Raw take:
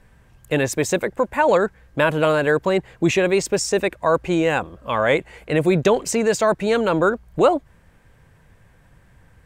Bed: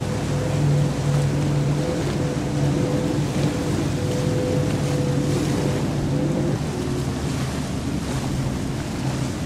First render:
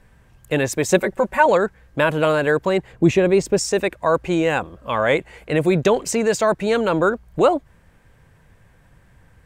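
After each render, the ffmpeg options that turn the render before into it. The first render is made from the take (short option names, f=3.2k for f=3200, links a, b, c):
-filter_complex "[0:a]asettb=1/sr,asplit=3[a][b][c];[a]atrim=end=0.884[d];[b]atrim=start=0.88:end=1.46,asetpts=PTS-STARTPTS,afade=t=in:d=0.004:c=qsin,afade=t=out:st=0.576:d=0.004:c=qsin,aecho=1:1:5.3:0.9,atrim=end_sample=25578[e];[c]atrim=start=1.456[f];[d][e]acrossfade=d=0.004:c1=hsin:c2=qsin[g];[g][f]acrossfade=d=0.004:c1=qsin:c2=hsin,asettb=1/sr,asplit=3[h][i][j];[h]atrim=end=2.924[k];[i]atrim=start=2.92:end=3.58,asetpts=PTS-STARTPTS,afade=t=in:d=0.004:c=qsin,afade=t=out:st=0.656:d=0.004:c=qsin,tiltshelf=f=710:g=5[l];[j]atrim=start=3.576[m];[k][l]acrossfade=d=0.004:c1=hsin:c2=qsin[n];[n][m]acrossfade=d=0.004:c1=qsin:c2=hsin"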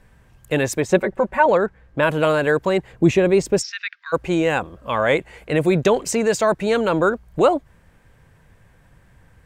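-filter_complex "[0:a]asettb=1/sr,asplit=3[a][b][c];[a]atrim=end=0.804[d];[b]atrim=start=0.8:end=2.03,asetpts=PTS-STARTPTS,afade=t=in:d=0.004:c=qsin,afade=t=out:st=1.226:d=0.004:c=qsin,lowpass=f=2.3k:p=1[e];[c]atrim=start=2.026[f];[d][e]acrossfade=d=0.004:c1=hsin:c2=qsin[g];[g][f]acrossfade=d=0.004:c1=qsin:c2=hsin,asplit=3[h][i][j];[h]afade=t=out:st=3.61:d=0.02[k];[i]asuperpass=centerf=2800:order=12:qfactor=0.69,afade=t=in:st=3.61:d=0.02,afade=t=out:st=4.12:d=0.02[l];[j]afade=t=in:st=4.12:d=0.02[m];[k][l][m]amix=inputs=3:normalize=0"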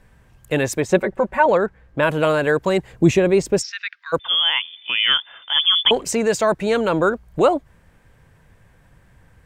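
-filter_complex "[0:a]asettb=1/sr,asplit=3[a][b][c];[a]atrim=end=2.664[d];[b]atrim=start=2.66:end=3.19,asetpts=PTS-STARTPTS,afade=t=in:d=0.004:c=qsin,afade=t=out:st=0.526:d=0.004:c=qsin,bass=f=250:g=2,treble=f=4k:g=5[e];[c]atrim=start=3.186[f];[d][e]acrossfade=d=0.004:c1=hsin:c2=qsin[g];[g][f]acrossfade=d=0.004:c1=qsin:c2=hsin,asettb=1/sr,asplit=3[h][i][j];[h]atrim=end=4.194[k];[i]atrim=start=4.19:end=5.91,asetpts=PTS-STARTPTS,afade=t=in:d=0.004:c=qsin,afade=t=out:st=1.716:d=0.004:c=qsin,lowpass=f=3.1k:t=q:w=0.5098,lowpass=f=3.1k:t=q:w=0.6013,lowpass=f=3.1k:t=q:w=0.9,lowpass=f=3.1k:t=q:w=2.563,afreqshift=-3600[l];[j]atrim=start=5.906[m];[k][l]acrossfade=d=0.004:c1=hsin:c2=qsin[n];[n][m]acrossfade=d=0.004:c1=qsin:c2=hsin"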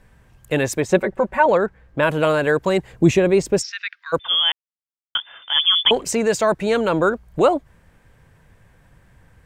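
-filter_complex "[0:a]asplit=3[a][b][c];[a]atrim=end=4.52,asetpts=PTS-STARTPTS,afade=t=out:st=4.516:d=0.004:c=hsin[d];[b]atrim=start=4.52:end=5.15,asetpts=PTS-STARTPTS,volume=0[e];[c]atrim=start=5.15,asetpts=PTS-STARTPTS,afade=t=in:d=0.004:c=hsin[f];[d][e][f]concat=n=3:v=0:a=1"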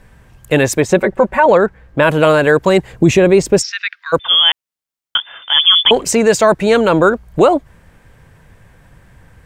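-af "alimiter=level_in=7.5dB:limit=-1dB:release=50:level=0:latency=1"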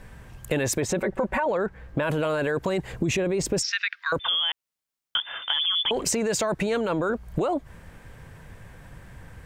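-af "alimiter=limit=-11.5dB:level=0:latency=1:release=10,acompressor=threshold=-22dB:ratio=6"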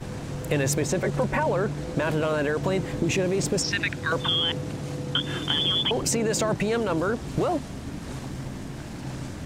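-filter_complex "[1:a]volume=-10.5dB[a];[0:a][a]amix=inputs=2:normalize=0"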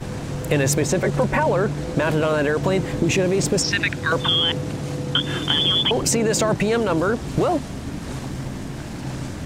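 -af "volume=5dB"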